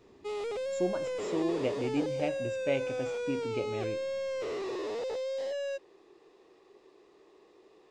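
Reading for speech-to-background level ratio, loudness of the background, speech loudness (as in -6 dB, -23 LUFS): -0.5 dB, -35.0 LUFS, -35.5 LUFS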